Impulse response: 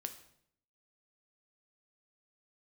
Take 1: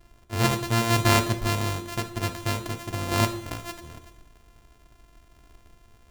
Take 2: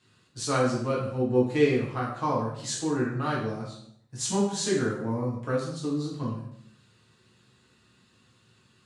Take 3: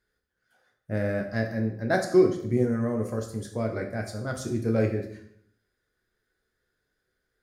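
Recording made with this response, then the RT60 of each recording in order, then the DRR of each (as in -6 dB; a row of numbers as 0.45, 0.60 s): 1; 0.65, 0.65, 0.65 s; 6.5, -5.0, 2.0 dB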